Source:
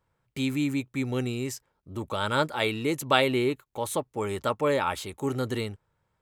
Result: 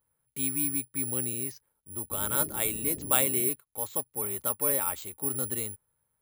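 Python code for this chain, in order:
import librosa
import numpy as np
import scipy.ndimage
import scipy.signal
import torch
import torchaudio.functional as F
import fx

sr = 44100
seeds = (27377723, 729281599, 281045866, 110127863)

y = (np.kron(scipy.signal.resample_poly(x, 1, 4), np.eye(4)[0]) * 4)[:len(x)]
y = fx.dmg_noise_band(y, sr, seeds[0], low_hz=42.0, high_hz=380.0, level_db=-35.0, at=(2.1, 3.48), fade=0.02)
y = y * librosa.db_to_amplitude(-8.5)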